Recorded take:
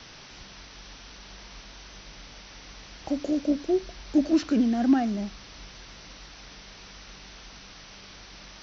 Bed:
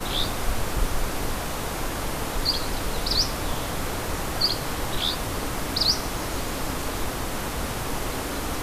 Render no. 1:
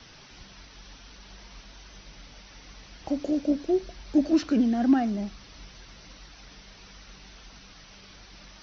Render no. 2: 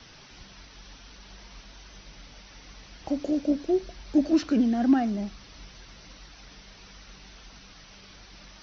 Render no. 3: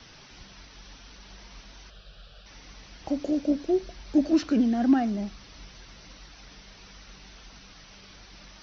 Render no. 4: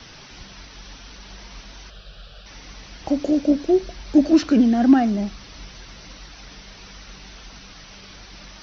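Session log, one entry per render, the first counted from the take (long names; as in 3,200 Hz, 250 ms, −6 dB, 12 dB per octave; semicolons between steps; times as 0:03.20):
broadband denoise 6 dB, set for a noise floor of −47 dBFS
no processing that can be heard
0:01.90–0:02.46: phaser with its sweep stopped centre 1,400 Hz, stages 8
level +7 dB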